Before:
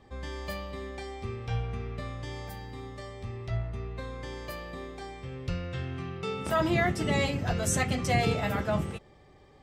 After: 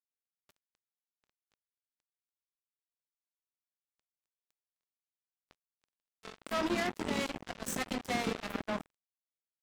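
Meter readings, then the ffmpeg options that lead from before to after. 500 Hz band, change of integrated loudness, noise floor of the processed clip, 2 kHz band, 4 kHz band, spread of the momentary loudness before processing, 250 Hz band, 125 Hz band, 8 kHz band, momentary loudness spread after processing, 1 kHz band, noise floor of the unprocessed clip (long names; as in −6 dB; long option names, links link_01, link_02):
−8.5 dB, −3.5 dB, below −85 dBFS, −7.5 dB, −5.0 dB, 15 LU, −6.5 dB, −20.0 dB, −8.5 dB, 10 LU, −7.5 dB, −56 dBFS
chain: -af "aeval=exprs='sgn(val(0))*max(abs(val(0))-0.00158,0)':channel_layout=same,lowshelf=frequency=170:width_type=q:width=3:gain=-10,acrusher=bits=3:mix=0:aa=0.5,volume=-8dB"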